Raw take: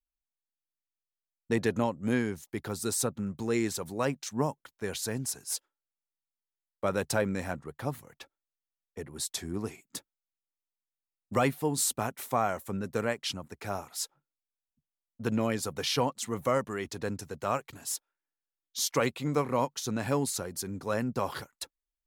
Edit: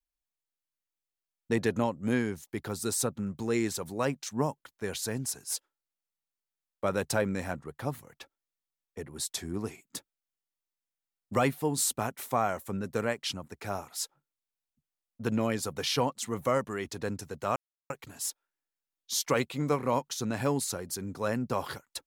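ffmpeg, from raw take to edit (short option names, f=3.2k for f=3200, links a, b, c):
-filter_complex "[0:a]asplit=2[a][b];[a]atrim=end=17.56,asetpts=PTS-STARTPTS,afade=t=out:st=17.556:d=0.004:c=hsin,apad=pad_dur=0.34[c];[b]atrim=start=17.56,asetpts=PTS-STARTPTS,afade=t=in:d=0.004:c=hsin[d];[c][d]concat=n=2:v=0:a=1"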